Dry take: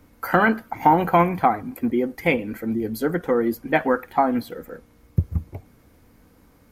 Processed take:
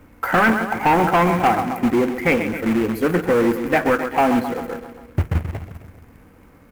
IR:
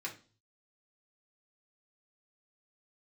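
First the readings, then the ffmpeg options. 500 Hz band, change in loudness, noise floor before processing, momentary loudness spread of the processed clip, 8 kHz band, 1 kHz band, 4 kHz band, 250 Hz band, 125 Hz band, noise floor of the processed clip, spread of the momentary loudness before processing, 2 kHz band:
+3.5 dB, +3.0 dB, -56 dBFS, 12 LU, +8.0 dB, +2.0 dB, +6.0 dB, +4.0 dB, +3.0 dB, -49 dBFS, 10 LU, +4.5 dB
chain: -filter_complex "[0:a]asplit=2[s0][s1];[s1]aecho=0:1:132|264|396|528|660|792:0.251|0.143|0.0816|0.0465|0.0265|0.0151[s2];[s0][s2]amix=inputs=2:normalize=0,asoftclip=type=tanh:threshold=0.168,asplit=2[s3][s4];[1:a]atrim=start_sample=2205,lowpass=f=2000:w=0.5412,lowpass=f=2000:w=1.3066[s5];[s4][s5]afir=irnorm=-1:irlink=0,volume=0.141[s6];[s3][s6]amix=inputs=2:normalize=0,acrusher=bits=2:mode=log:mix=0:aa=0.000001,highshelf=f=3000:t=q:w=1.5:g=-8,volume=1.78"

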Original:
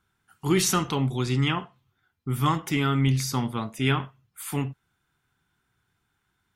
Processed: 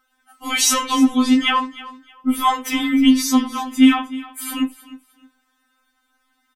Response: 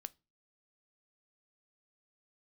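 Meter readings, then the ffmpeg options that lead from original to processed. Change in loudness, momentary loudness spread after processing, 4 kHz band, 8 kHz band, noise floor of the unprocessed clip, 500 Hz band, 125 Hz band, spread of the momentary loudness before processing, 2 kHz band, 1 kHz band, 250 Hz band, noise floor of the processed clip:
+8.0 dB, 14 LU, +9.5 dB, +9.0 dB, -76 dBFS, -4.0 dB, under -20 dB, 11 LU, +7.5 dB, +9.0 dB, +12.0 dB, -68 dBFS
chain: -filter_complex "[0:a]aecho=1:1:309|618:0.133|0.032,asplit=2[s0][s1];[1:a]atrim=start_sample=2205[s2];[s1][s2]afir=irnorm=-1:irlink=0,volume=0.891[s3];[s0][s3]amix=inputs=2:normalize=0,afftfilt=real='re*3.46*eq(mod(b,12),0)':imag='im*3.46*eq(mod(b,12),0)':win_size=2048:overlap=0.75,volume=2.37"

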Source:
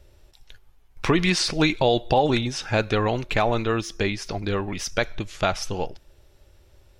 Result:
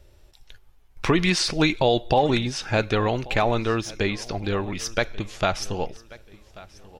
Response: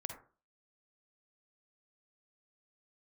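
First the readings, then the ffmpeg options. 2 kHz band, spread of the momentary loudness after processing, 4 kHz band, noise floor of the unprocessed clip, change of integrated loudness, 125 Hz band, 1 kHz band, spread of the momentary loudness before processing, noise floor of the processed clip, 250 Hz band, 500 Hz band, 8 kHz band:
0.0 dB, 9 LU, 0.0 dB, -57 dBFS, 0.0 dB, 0.0 dB, 0.0 dB, 9 LU, -55 dBFS, 0.0 dB, 0.0 dB, 0.0 dB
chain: -af "aecho=1:1:1136|2272|3408:0.0891|0.0303|0.0103"

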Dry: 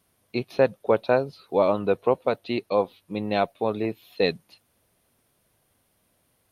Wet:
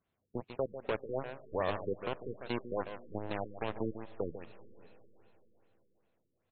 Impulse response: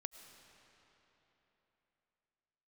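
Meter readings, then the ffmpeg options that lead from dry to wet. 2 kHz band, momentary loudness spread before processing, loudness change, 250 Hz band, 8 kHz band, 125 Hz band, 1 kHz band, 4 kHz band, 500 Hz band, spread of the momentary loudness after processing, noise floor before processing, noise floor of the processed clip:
-12.0 dB, 9 LU, -13.5 dB, -12.5 dB, no reading, -9.0 dB, -13.0 dB, -13.5 dB, -14.5 dB, 8 LU, -69 dBFS, -82 dBFS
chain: -filter_complex "[0:a]alimiter=limit=0.178:level=0:latency=1:release=146,asplit=2[s0][s1];[s1]adelay=577.3,volume=0.0794,highshelf=f=4000:g=-13[s2];[s0][s2]amix=inputs=2:normalize=0,aeval=exprs='0.2*(cos(1*acos(clip(val(0)/0.2,-1,1)))-cos(1*PI/2))+0.0447*(cos(7*acos(clip(val(0)/0.2,-1,1)))-cos(7*PI/2))':c=same,asplit=2[s3][s4];[1:a]atrim=start_sample=2205,adelay=146[s5];[s4][s5]afir=irnorm=-1:irlink=0,volume=0.473[s6];[s3][s6]amix=inputs=2:normalize=0,afftfilt=real='re*lt(b*sr/1024,480*pow(4400/480,0.5+0.5*sin(2*PI*2.5*pts/sr)))':imag='im*lt(b*sr/1024,480*pow(4400/480,0.5+0.5*sin(2*PI*2.5*pts/sr)))':win_size=1024:overlap=0.75,volume=0.398"

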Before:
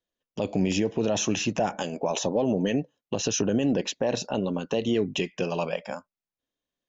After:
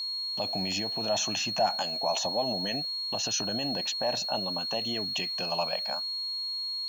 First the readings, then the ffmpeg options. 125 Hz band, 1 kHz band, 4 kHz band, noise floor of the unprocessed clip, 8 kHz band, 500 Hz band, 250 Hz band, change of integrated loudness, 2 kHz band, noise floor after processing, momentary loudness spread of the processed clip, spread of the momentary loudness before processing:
-10.0 dB, +1.5 dB, +9.0 dB, under -85 dBFS, no reading, -6.0 dB, -11.0 dB, -1.5 dB, -2.5 dB, -34 dBFS, 3 LU, 7 LU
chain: -af "aeval=exprs='val(0)+0.0398*sin(2*PI*4300*n/s)':c=same,acrusher=bits=7:mix=0:aa=0.5,lowshelf=f=560:t=q:w=3:g=-6.5,volume=0.708"

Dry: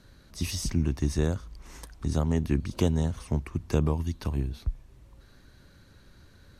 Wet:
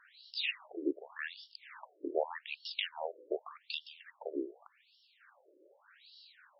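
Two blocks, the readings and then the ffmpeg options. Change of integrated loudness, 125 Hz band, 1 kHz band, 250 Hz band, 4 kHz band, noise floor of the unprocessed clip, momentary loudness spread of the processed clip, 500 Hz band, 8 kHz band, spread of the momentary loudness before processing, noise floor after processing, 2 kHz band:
-10.0 dB, under -40 dB, -3.0 dB, -13.0 dB, +1.5 dB, -56 dBFS, 17 LU, -5.0 dB, under -40 dB, 14 LU, -70 dBFS, +3.0 dB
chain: -af "aemphasis=mode=production:type=75kf,afftfilt=real='re*between(b*sr/1024,410*pow(4000/410,0.5+0.5*sin(2*PI*0.85*pts/sr))/1.41,410*pow(4000/410,0.5+0.5*sin(2*PI*0.85*pts/sr))*1.41)':imag='im*between(b*sr/1024,410*pow(4000/410,0.5+0.5*sin(2*PI*0.85*pts/sr))/1.41,410*pow(4000/410,0.5+0.5*sin(2*PI*0.85*pts/sr))*1.41)':win_size=1024:overlap=0.75,volume=1.5"

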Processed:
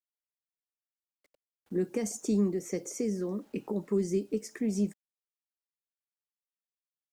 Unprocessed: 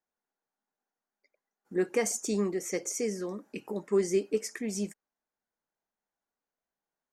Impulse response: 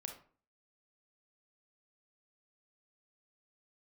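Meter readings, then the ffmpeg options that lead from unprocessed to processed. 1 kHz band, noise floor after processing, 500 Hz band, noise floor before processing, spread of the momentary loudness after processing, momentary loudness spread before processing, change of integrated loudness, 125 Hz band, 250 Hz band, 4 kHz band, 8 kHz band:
-6.0 dB, under -85 dBFS, -3.0 dB, under -85 dBFS, 8 LU, 10 LU, -0.5 dB, +5.0 dB, +3.5 dB, -6.5 dB, -6.0 dB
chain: -filter_complex "[0:a]tiltshelf=f=1200:g=6.5,acrusher=bits=10:mix=0:aa=0.000001,acrossover=split=260|3000[s0][s1][s2];[s1]acompressor=threshold=0.02:ratio=6[s3];[s0][s3][s2]amix=inputs=3:normalize=0"

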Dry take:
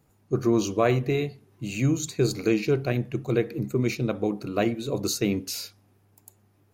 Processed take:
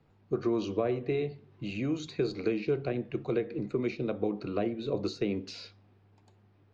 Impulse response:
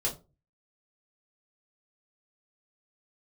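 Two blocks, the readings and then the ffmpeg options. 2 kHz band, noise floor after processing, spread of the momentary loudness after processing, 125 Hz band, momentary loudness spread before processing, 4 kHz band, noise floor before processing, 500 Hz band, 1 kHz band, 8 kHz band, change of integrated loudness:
-9.0 dB, -64 dBFS, 7 LU, -10.5 dB, 9 LU, -9.0 dB, -64 dBFS, -5.0 dB, -8.5 dB, under -20 dB, -6.5 dB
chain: -filter_complex "[0:a]lowpass=f=4300:w=0.5412,lowpass=f=4300:w=1.3066,acrossover=split=270|610[s0][s1][s2];[s0]acompressor=threshold=0.0141:ratio=4[s3];[s1]acompressor=threshold=0.0398:ratio=4[s4];[s2]acompressor=threshold=0.00891:ratio=4[s5];[s3][s4][s5]amix=inputs=3:normalize=0,asplit=2[s6][s7];[1:a]atrim=start_sample=2205[s8];[s7][s8]afir=irnorm=-1:irlink=0,volume=0.106[s9];[s6][s9]amix=inputs=2:normalize=0,volume=0.841"

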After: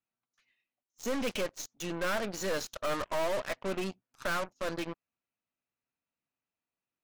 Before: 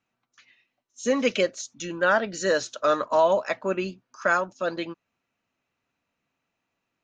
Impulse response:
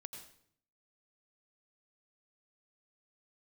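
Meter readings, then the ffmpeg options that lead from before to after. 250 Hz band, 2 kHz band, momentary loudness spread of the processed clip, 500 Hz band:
-7.0 dB, -10.0 dB, 8 LU, -10.5 dB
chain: -af "highshelf=f=7800:g=-4,asoftclip=type=tanh:threshold=0.0473,aeval=exprs='0.0473*(cos(1*acos(clip(val(0)/0.0473,-1,1)))-cos(1*PI/2))+0.0133*(cos(2*acos(clip(val(0)/0.0473,-1,1)))-cos(2*PI/2))+0.00266*(cos(6*acos(clip(val(0)/0.0473,-1,1)))-cos(6*PI/2))+0.00841*(cos(7*acos(clip(val(0)/0.0473,-1,1)))-cos(7*PI/2))+0.00188*(cos(8*acos(clip(val(0)/0.0473,-1,1)))-cos(8*PI/2))':c=same,volume=0.708"

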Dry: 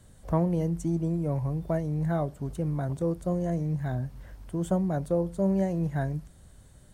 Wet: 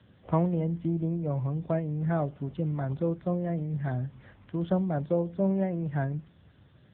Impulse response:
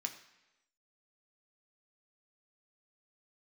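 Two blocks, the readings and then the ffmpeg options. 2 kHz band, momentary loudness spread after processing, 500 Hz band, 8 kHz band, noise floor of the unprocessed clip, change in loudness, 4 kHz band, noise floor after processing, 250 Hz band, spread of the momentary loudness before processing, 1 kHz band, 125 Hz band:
+0.5 dB, 6 LU, -0.5 dB, under -30 dB, -54 dBFS, -1.0 dB, no reading, -59 dBFS, -1.0 dB, 7 LU, 0.0 dB, -1.0 dB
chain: -filter_complex "[0:a]acrossover=split=1100[s0][s1];[s1]acontrast=22[s2];[s0][s2]amix=inputs=2:normalize=0" -ar 8000 -c:a libopencore_amrnb -b:a 7950

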